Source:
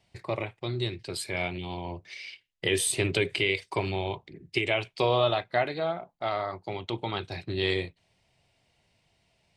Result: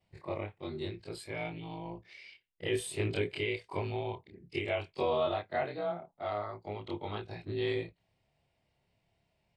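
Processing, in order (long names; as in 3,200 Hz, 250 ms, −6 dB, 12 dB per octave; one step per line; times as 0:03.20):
every overlapping window played backwards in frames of 58 ms
high-shelf EQ 2,400 Hz −9.5 dB
notch filter 6,100 Hz, Q 15
level −2 dB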